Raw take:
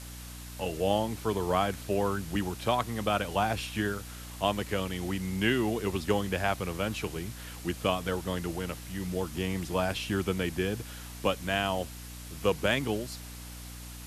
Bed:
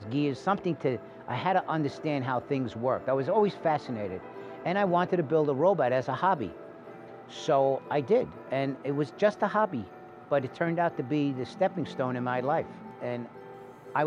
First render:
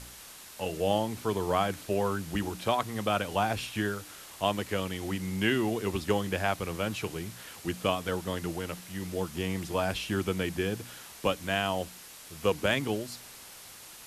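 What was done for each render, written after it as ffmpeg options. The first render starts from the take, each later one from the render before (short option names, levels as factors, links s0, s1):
-af "bandreject=f=60:t=h:w=4,bandreject=f=120:t=h:w=4,bandreject=f=180:t=h:w=4,bandreject=f=240:t=h:w=4,bandreject=f=300:t=h:w=4"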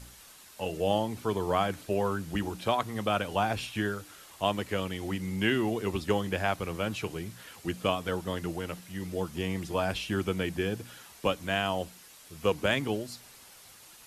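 -af "afftdn=nr=6:nf=-49"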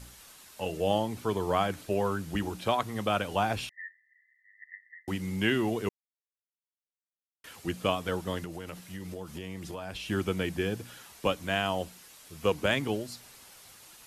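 -filter_complex "[0:a]asettb=1/sr,asplit=3[s0][s1][s2];[s0]atrim=end=3.694[s3];[s1]atrim=start=3.69:end=5.08,asetpts=PTS-STARTPTS,afade=t=in:d=0.004:c=qsin,afade=t=out:st=1.386:d=0.004:c=qsin,asuperpass=centerf=1900:order=20:qfactor=6.2[s4];[s2]atrim=start=5.076[s5];[s3][s4]acrossfade=d=0.004:c1=hsin:c2=qsin[s6];[s6][s5]acrossfade=d=0.004:c1=qsin:c2=hsin,asettb=1/sr,asplit=3[s7][s8][s9];[s7]atrim=end=8.444[s10];[s8]atrim=start=8.44:end=10.06,asetpts=PTS-STARTPTS,afade=t=in:d=0.004:c=qsin,afade=t=out:st=1.616:d=0.004:c=qsin,acompressor=threshold=0.0178:ratio=6:attack=3.2:release=140:knee=1:detection=peak[s11];[s9]atrim=start=10.056[s12];[s10][s11]acrossfade=d=0.004:c1=hsin:c2=qsin[s13];[s13][s12]acrossfade=d=0.004:c1=qsin:c2=hsin,asplit=3[s14][s15][s16];[s14]atrim=end=5.89,asetpts=PTS-STARTPTS,afade=t=out:st=5.886:d=0.004:c=hsin[s17];[s15]atrim=start=5.89:end=7.44,asetpts=PTS-STARTPTS,volume=0[s18];[s16]atrim=start=7.44,asetpts=PTS-STARTPTS,afade=t=in:d=0.004:c=hsin[s19];[s17][s18][s19]concat=n=3:v=0:a=1"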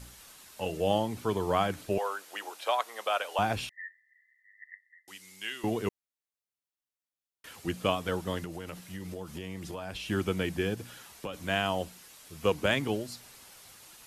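-filter_complex "[0:a]asettb=1/sr,asplit=3[s0][s1][s2];[s0]atrim=end=1.984[s3];[s1]atrim=start=1.98:end=3.39,asetpts=PTS-STARTPTS,afade=t=in:d=0.004:c=qsin,afade=t=out:st=1.406:d=0.004:c=qsin,highpass=f=520:w=0.5412,highpass=f=520:w=1.3066[s4];[s2]atrim=start=3.386[s5];[s3][s4]acrossfade=d=0.004:c1=hsin:c2=qsin[s6];[s6][s5]acrossfade=d=0.004:c1=qsin:c2=hsin,asettb=1/sr,asplit=3[s7][s8][s9];[s7]atrim=end=4.744[s10];[s8]atrim=start=4.74:end=5.64,asetpts=PTS-STARTPTS,afade=t=in:d=0.004:c=qsin,afade=t=out:st=0.896:d=0.004:c=qsin,bandpass=f=7600:t=q:w=0.56[s11];[s9]atrim=start=5.636[s12];[s10][s11]acrossfade=d=0.004:c1=hsin:c2=qsin[s13];[s13][s12]acrossfade=d=0.004:c1=qsin:c2=hsin,asplit=3[s14][s15][s16];[s14]afade=t=out:st=10.74:d=0.02[s17];[s15]acompressor=threshold=0.0224:ratio=6:attack=3.2:release=140:knee=1:detection=peak,afade=t=in:st=10.74:d=0.02,afade=t=out:st=11.33:d=0.02[s18];[s16]afade=t=in:st=11.33:d=0.02[s19];[s17][s18][s19]amix=inputs=3:normalize=0"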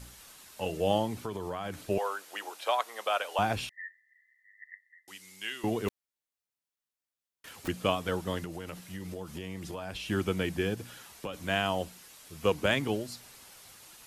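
-filter_complex "[0:a]asettb=1/sr,asplit=3[s0][s1][s2];[s0]atrim=end=1.254[s3];[s1]atrim=start=1.25:end=1.77,asetpts=PTS-STARTPTS,afade=t=in:d=0.004:c=qsin,afade=t=out:st=0.516:d=0.004:c=qsin,acompressor=threshold=0.0282:ratio=10:attack=3.2:release=140:knee=1:detection=peak[s4];[s2]atrim=start=1.766[s5];[s3][s4]acrossfade=d=0.004:c1=hsin:c2=qsin[s6];[s6][s5]acrossfade=d=0.004:c1=qsin:c2=hsin,asettb=1/sr,asplit=3[s7][s8][s9];[s7]atrim=end=5.884[s10];[s8]atrim=start=5.88:end=7.68,asetpts=PTS-STARTPTS,afade=t=in:d=0.004:c=qsin,afade=t=out:st=1.796:d=0.004:c=qsin,aeval=exprs='(mod(63.1*val(0)+1,2)-1)/63.1':c=same[s11];[s9]atrim=start=7.676[s12];[s10][s11]acrossfade=d=0.004:c1=hsin:c2=qsin[s13];[s13][s12]acrossfade=d=0.004:c1=qsin:c2=hsin"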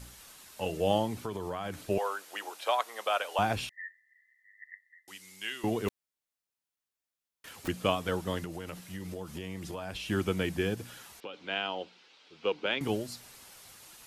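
-filter_complex "[0:a]asettb=1/sr,asplit=3[s0][s1][s2];[s0]atrim=end=11.204[s3];[s1]atrim=start=11.2:end=12.81,asetpts=PTS-STARTPTS,afade=t=in:d=0.004:c=qsin,afade=t=out:st=1.606:d=0.004:c=qsin,highpass=380,equalizer=f=640:t=q:w=4:g=-8,equalizer=f=1100:t=q:w=4:g=-7,equalizer=f=1800:t=q:w=4:g=-7,lowpass=f=4200:w=0.5412,lowpass=f=4200:w=1.3066[s4];[s2]atrim=start=12.806[s5];[s3][s4]acrossfade=d=0.004:c1=hsin:c2=qsin[s6];[s6][s5]acrossfade=d=0.004:c1=qsin:c2=hsin"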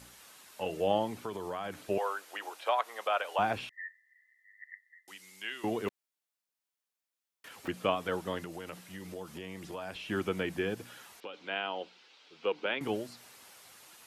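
-filter_complex "[0:a]highpass=f=270:p=1,acrossover=split=3100[s0][s1];[s1]acompressor=threshold=0.00224:ratio=4:attack=1:release=60[s2];[s0][s2]amix=inputs=2:normalize=0"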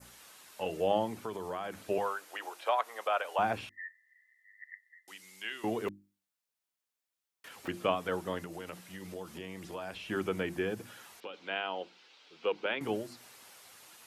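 -af "bandreject=f=50:t=h:w=6,bandreject=f=100:t=h:w=6,bandreject=f=150:t=h:w=6,bandreject=f=200:t=h:w=6,bandreject=f=250:t=h:w=6,bandreject=f=300:t=h:w=6,bandreject=f=350:t=h:w=6,adynamicequalizer=threshold=0.00224:dfrequency=3500:dqfactor=1.1:tfrequency=3500:tqfactor=1.1:attack=5:release=100:ratio=0.375:range=2:mode=cutabove:tftype=bell"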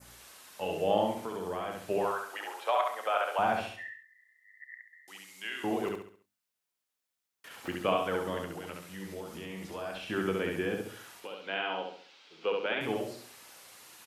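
-filter_complex "[0:a]asplit=2[s0][s1];[s1]adelay=31,volume=0.224[s2];[s0][s2]amix=inputs=2:normalize=0,asplit=2[s3][s4];[s4]aecho=0:1:68|136|204|272|340:0.708|0.276|0.108|0.042|0.0164[s5];[s3][s5]amix=inputs=2:normalize=0"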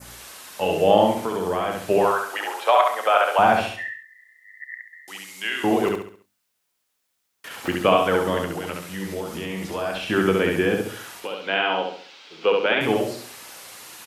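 -af "volume=3.76,alimiter=limit=0.708:level=0:latency=1"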